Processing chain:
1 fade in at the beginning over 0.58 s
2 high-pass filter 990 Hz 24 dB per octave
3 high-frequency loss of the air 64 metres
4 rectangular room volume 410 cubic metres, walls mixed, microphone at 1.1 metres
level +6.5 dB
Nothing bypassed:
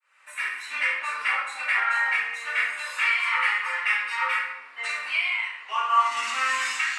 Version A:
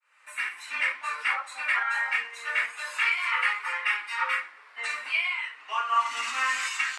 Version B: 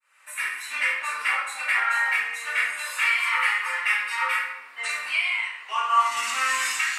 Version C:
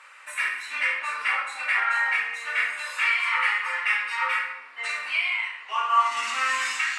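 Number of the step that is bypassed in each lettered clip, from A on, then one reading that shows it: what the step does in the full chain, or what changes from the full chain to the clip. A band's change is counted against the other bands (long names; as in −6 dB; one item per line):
4, change in integrated loudness −3.0 LU
3, 8 kHz band +6.0 dB
1, change in momentary loudness spread −1 LU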